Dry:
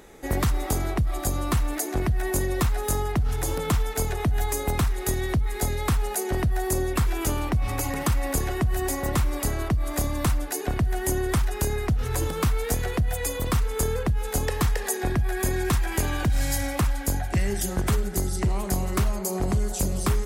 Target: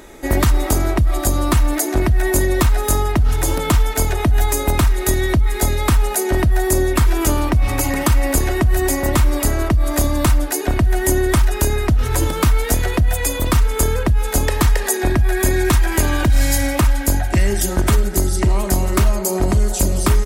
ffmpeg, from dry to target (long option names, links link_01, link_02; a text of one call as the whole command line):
ffmpeg -i in.wav -af "aecho=1:1:3.2:0.36,volume=8dB" out.wav